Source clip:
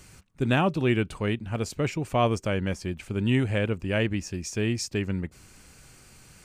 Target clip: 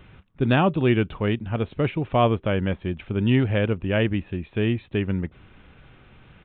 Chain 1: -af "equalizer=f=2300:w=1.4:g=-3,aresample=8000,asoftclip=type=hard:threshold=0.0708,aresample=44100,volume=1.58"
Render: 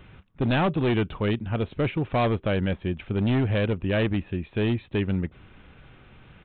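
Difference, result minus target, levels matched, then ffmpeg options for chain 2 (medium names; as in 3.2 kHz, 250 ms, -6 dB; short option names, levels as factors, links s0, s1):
hard clipper: distortion +36 dB
-af "equalizer=f=2300:w=1.4:g=-3,aresample=8000,asoftclip=type=hard:threshold=0.251,aresample=44100,volume=1.58"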